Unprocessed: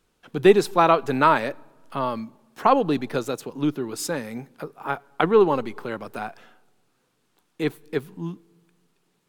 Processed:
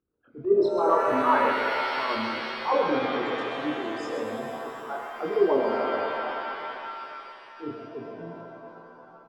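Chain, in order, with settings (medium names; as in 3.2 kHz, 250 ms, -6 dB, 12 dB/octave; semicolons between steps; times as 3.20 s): resonances exaggerated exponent 3; low-pass 2.2 kHz 12 dB/octave; de-esser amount 90%; high-pass 120 Hz 12 dB/octave; peaking EQ 170 Hz -13 dB 0.71 oct; transient shaper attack -11 dB, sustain +3 dB; chorus voices 2, 0.34 Hz, delay 25 ms, depth 2.9 ms; delay 132 ms -8 dB; pitch-shifted reverb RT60 2.9 s, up +7 st, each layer -2 dB, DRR 3.5 dB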